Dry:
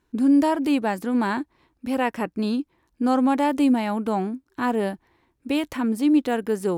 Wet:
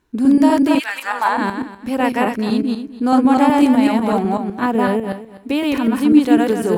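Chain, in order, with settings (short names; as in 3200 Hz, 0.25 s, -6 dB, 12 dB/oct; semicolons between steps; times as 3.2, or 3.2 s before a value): regenerating reverse delay 0.125 s, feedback 40%, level 0 dB; 0.78–1.37 resonant high-pass 2400 Hz -> 690 Hz, resonance Q 1.9; 4.35–6.05 dynamic EQ 7400 Hz, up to -5 dB, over -51 dBFS, Q 1.1; gain +4 dB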